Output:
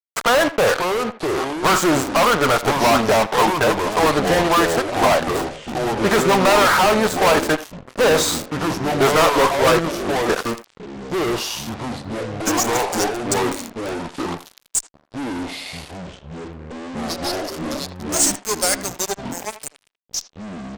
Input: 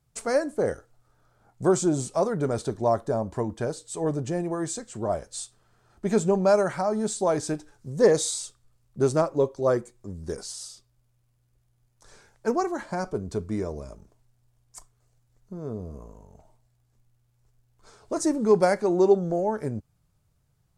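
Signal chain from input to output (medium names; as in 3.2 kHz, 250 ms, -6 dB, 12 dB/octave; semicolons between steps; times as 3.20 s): dynamic bell 390 Hz, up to -4 dB, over -37 dBFS, Q 4.4; band-pass sweep 1.2 kHz -> 7.8 kHz, 11.72–12.52 s; fuzz box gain 52 dB, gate -52 dBFS; ever faster or slower copies 454 ms, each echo -5 st, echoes 3, each echo -6 dB; speakerphone echo 80 ms, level -13 dB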